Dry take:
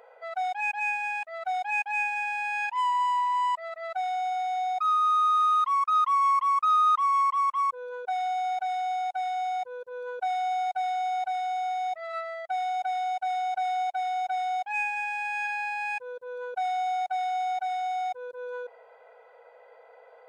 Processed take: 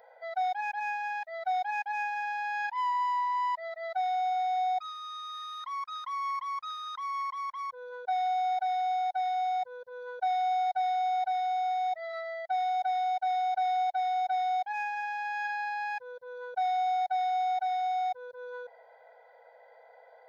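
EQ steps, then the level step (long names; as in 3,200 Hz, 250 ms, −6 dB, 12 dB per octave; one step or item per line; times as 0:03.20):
phaser with its sweep stopped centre 1,800 Hz, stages 8
0.0 dB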